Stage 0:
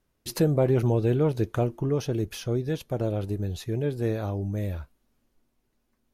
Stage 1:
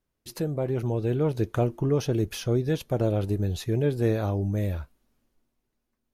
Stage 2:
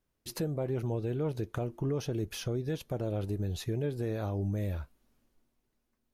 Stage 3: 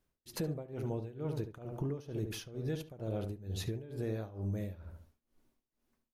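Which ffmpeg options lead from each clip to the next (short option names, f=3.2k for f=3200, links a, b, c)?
-af "dynaudnorm=f=280:g=9:m=10.5dB,volume=-7dB"
-af "alimiter=limit=-24dB:level=0:latency=1:release=428"
-filter_complex "[0:a]asplit=2[a][b];[b]adelay=72,lowpass=f=1.8k:p=1,volume=-7dB,asplit=2[c][d];[d]adelay=72,lowpass=f=1.8k:p=1,volume=0.39,asplit=2[e][f];[f]adelay=72,lowpass=f=1.8k:p=1,volume=0.39,asplit=2[g][h];[h]adelay=72,lowpass=f=1.8k:p=1,volume=0.39,asplit=2[i][j];[j]adelay=72,lowpass=f=1.8k:p=1,volume=0.39[k];[a][c][e][g][i][k]amix=inputs=6:normalize=0,tremolo=f=2.2:d=0.9,acompressor=threshold=-37dB:ratio=2,volume=1.5dB"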